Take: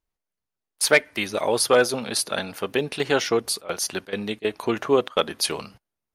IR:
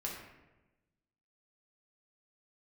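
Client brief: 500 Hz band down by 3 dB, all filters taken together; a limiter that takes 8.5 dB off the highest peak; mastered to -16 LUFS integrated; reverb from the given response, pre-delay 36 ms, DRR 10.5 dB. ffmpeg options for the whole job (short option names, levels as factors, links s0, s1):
-filter_complex "[0:a]equalizer=f=500:t=o:g=-3.5,alimiter=limit=0.211:level=0:latency=1,asplit=2[s0][s1];[1:a]atrim=start_sample=2205,adelay=36[s2];[s1][s2]afir=irnorm=-1:irlink=0,volume=0.266[s3];[s0][s3]amix=inputs=2:normalize=0,volume=3.55"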